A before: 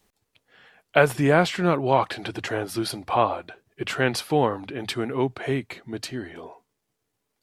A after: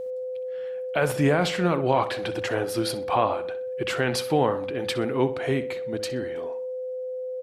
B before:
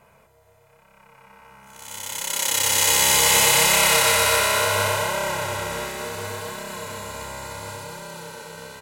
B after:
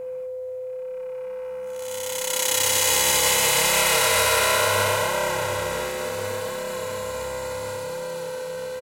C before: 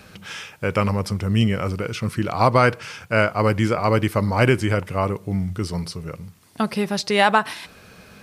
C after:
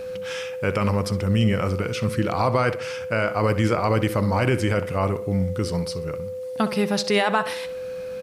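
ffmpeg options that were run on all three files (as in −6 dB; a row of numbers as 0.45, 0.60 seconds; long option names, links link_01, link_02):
-filter_complex "[0:a]alimiter=limit=-10.5dB:level=0:latency=1:release=33,aeval=exprs='val(0)+0.0316*sin(2*PI*510*n/s)':channel_layout=same,asplit=2[link_01][link_02];[link_02]adelay=63,lowpass=frequency=3800:poles=1,volume=-13dB,asplit=2[link_03][link_04];[link_04]adelay=63,lowpass=frequency=3800:poles=1,volume=0.4,asplit=2[link_05][link_06];[link_06]adelay=63,lowpass=frequency=3800:poles=1,volume=0.4,asplit=2[link_07][link_08];[link_08]adelay=63,lowpass=frequency=3800:poles=1,volume=0.4[link_09];[link_03][link_05][link_07][link_09]amix=inputs=4:normalize=0[link_10];[link_01][link_10]amix=inputs=2:normalize=0"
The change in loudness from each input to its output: −2.0, −3.5, −2.5 LU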